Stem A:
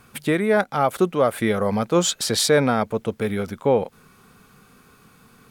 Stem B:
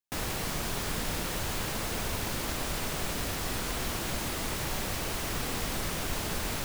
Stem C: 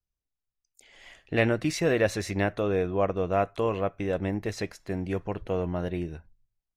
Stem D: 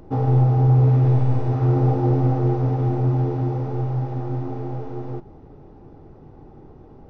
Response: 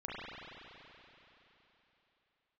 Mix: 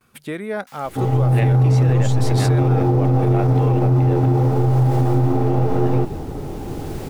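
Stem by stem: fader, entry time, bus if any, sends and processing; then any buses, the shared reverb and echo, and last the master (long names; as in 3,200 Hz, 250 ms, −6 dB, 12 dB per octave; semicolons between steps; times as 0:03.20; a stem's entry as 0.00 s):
−7.5 dB, 0.00 s, no send, noise gate with hold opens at −42 dBFS
−7.0 dB, 0.55 s, no send, high-pass filter 1,000 Hz 24 dB per octave; automatic ducking −8 dB, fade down 0.35 s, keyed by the third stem
+0.5 dB, 0.00 s, muted 0:04.26–0:05.41, no send, no processing
+0.5 dB, 0.85 s, no send, automatic gain control gain up to 16 dB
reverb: not used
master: brickwall limiter −9 dBFS, peak gain reduction 9 dB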